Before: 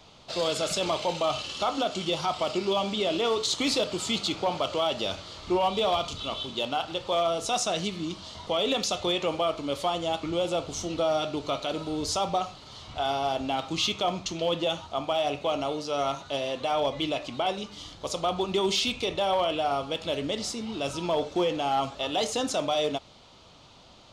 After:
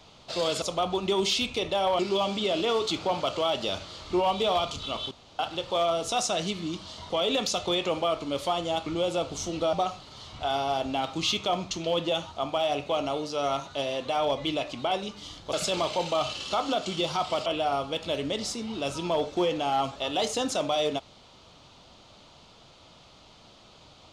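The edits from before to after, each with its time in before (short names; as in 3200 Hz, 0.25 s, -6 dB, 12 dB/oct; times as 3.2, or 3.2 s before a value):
0.62–2.55 swap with 18.08–19.45
3.45–4.26 cut
6.48–6.76 room tone
11.1–12.28 cut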